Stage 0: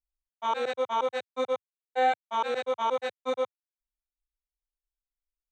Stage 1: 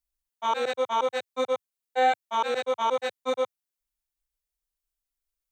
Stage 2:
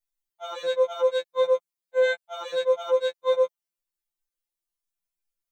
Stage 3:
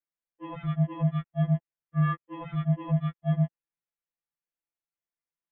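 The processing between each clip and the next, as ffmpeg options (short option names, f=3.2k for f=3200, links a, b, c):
-af "highshelf=f=5.7k:g=7.5,volume=2dB"
-af "afftfilt=real='re*2.83*eq(mod(b,8),0)':imag='im*2.83*eq(mod(b,8),0)':win_size=2048:overlap=0.75"
-af "highpass=f=210:t=q:w=0.5412,highpass=f=210:t=q:w=1.307,lowpass=f=2.8k:t=q:w=0.5176,lowpass=f=2.8k:t=q:w=0.7071,lowpass=f=2.8k:t=q:w=1.932,afreqshift=-360,volume=-3dB"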